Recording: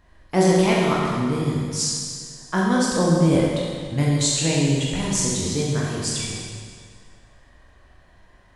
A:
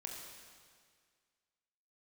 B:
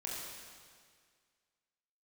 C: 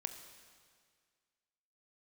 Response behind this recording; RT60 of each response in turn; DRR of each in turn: B; 1.9 s, 1.9 s, 1.9 s; -0.5 dB, -5.0 dB, 7.0 dB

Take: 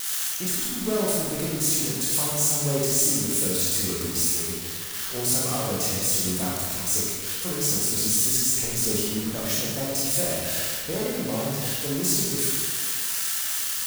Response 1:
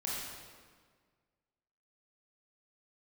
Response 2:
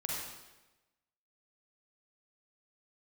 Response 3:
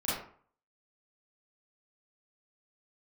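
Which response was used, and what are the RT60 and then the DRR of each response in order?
1; 1.7 s, 1.1 s, 0.50 s; -6.0 dB, -3.5 dB, -11.0 dB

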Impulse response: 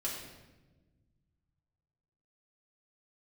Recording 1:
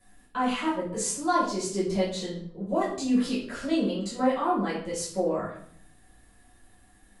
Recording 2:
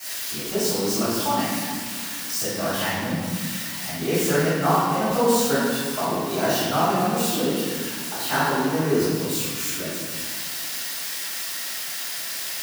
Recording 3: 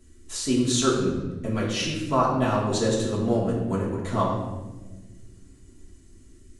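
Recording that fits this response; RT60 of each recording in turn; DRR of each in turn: 3; 0.55 s, 1.8 s, 1.2 s; -10.0 dB, -18.5 dB, -5.5 dB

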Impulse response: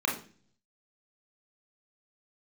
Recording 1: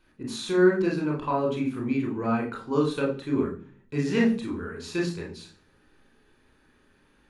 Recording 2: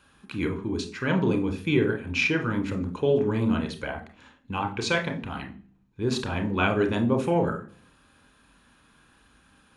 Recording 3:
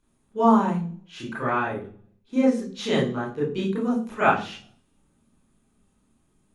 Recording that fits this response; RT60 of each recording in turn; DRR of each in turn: 1; 0.40 s, 0.40 s, 0.40 s; -2.0 dB, 4.5 dB, -7.0 dB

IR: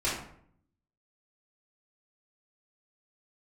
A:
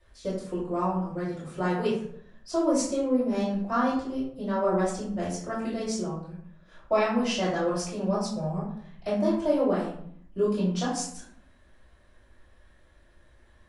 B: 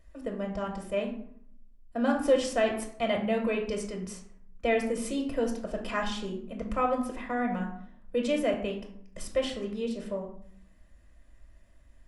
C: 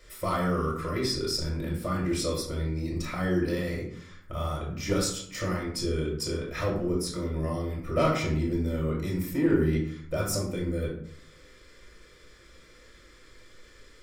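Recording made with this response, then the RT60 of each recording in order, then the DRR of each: A; 0.65 s, 0.65 s, 0.65 s; -10.5 dB, 1.5 dB, -4.0 dB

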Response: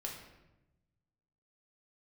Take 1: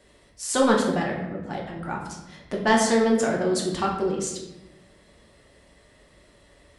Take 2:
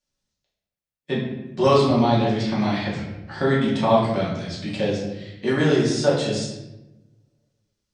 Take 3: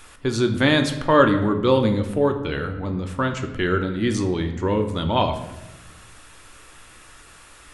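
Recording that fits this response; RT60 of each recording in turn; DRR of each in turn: 1; 1.0 s, 1.0 s, 1.0 s; -1.5 dB, -6.5 dB, 5.5 dB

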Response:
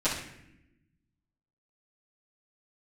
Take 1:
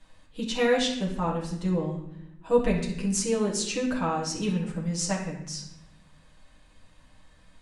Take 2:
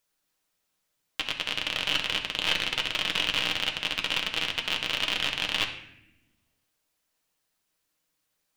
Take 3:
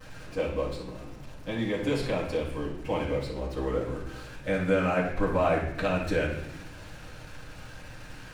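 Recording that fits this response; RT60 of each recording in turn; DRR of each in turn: 3; 0.80 s, 0.80 s, 0.80 s; -5.0 dB, 2.0 dB, -12.5 dB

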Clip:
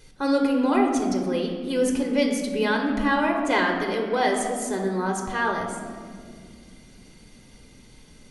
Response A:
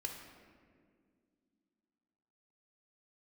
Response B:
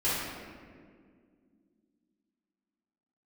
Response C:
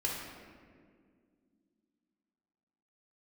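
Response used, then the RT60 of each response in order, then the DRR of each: A; 2.1 s, 2.0 s, 2.0 s; 2.0 dB, -12.0 dB, -3.5 dB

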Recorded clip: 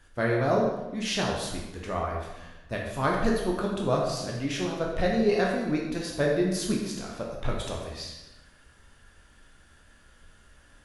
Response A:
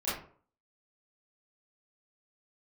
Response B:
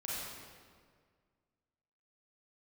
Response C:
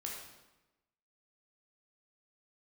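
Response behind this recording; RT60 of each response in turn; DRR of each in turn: C; 0.50 s, 1.8 s, 1.0 s; -12.5 dB, -7.5 dB, -2.0 dB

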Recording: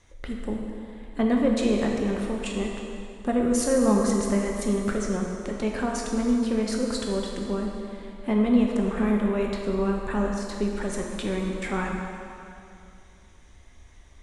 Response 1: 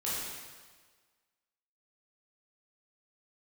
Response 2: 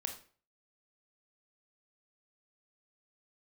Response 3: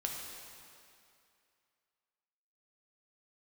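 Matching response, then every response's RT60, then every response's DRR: 3; 1.5 s, 0.45 s, 2.5 s; -9.0 dB, 4.0 dB, -0.5 dB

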